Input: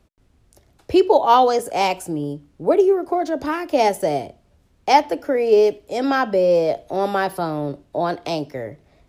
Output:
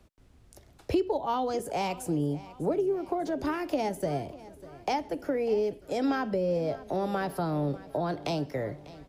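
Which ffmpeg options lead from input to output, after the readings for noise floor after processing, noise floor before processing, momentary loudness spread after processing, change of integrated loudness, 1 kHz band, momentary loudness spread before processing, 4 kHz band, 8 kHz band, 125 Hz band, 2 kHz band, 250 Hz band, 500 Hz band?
-58 dBFS, -59 dBFS, 6 LU, -11.5 dB, -13.5 dB, 12 LU, -12.0 dB, -9.5 dB, -1.5 dB, -11.5 dB, -6.5 dB, -11.5 dB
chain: -filter_complex "[0:a]acrossover=split=210[s0][s1];[s1]acompressor=threshold=0.0355:ratio=6[s2];[s0][s2]amix=inputs=2:normalize=0,aecho=1:1:597|1194|1791|2388|2985:0.119|0.0666|0.0373|0.0209|0.0117"

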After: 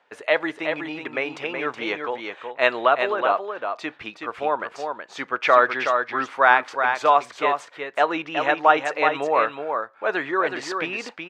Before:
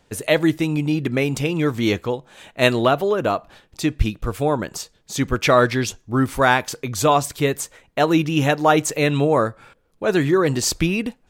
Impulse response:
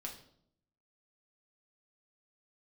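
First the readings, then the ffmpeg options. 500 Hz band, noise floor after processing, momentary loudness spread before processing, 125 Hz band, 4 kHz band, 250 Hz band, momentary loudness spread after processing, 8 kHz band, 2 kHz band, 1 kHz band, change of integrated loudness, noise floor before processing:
-3.5 dB, -49 dBFS, 9 LU, under -20 dB, -6.0 dB, -12.5 dB, 13 LU, under -15 dB, +1.5 dB, +2.0 dB, -2.5 dB, -60 dBFS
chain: -filter_complex "[0:a]highpass=790,lowpass=2000,asplit=2[s0][s1];[s1]aecho=0:1:372:0.501[s2];[s0][s2]amix=inputs=2:normalize=0,volume=1.5"

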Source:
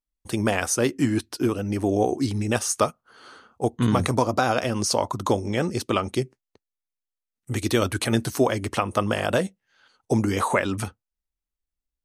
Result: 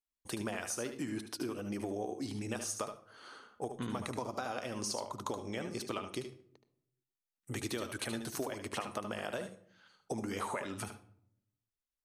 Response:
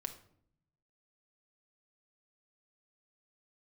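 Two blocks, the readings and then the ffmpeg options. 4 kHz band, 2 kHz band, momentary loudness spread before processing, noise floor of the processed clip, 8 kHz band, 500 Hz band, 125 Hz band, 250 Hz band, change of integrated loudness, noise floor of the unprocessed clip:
-12.5 dB, -14.0 dB, 7 LU, under -85 dBFS, -12.0 dB, -15.5 dB, -18.5 dB, -15.5 dB, -15.0 dB, under -85 dBFS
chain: -filter_complex "[0:a]lowshelf=f=150:g=-11.5,acompressor=threshold=0.0316:ratio=6,asplit=2[s0][s1];[1:a]atrim=start_sample=2205,adelay=74[s2];[s1][s2]afir=irnorm=-1:irlink=0,volume=0.501[s3];[s0][s3]amix=inputs=2:normalize=0,volume=0.531"

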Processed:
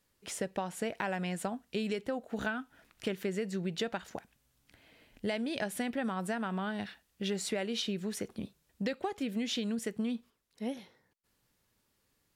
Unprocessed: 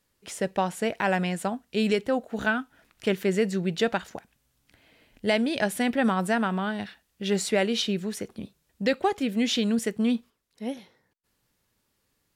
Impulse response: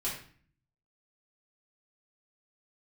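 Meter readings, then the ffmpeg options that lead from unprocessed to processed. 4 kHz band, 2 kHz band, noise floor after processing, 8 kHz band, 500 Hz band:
-8.0 dB, -9.5 dB, -76 dBFS, -6.0 dB, -9.5 dB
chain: -af "acompressor=threshold=0.0355:ratio=6,volume=0.794"

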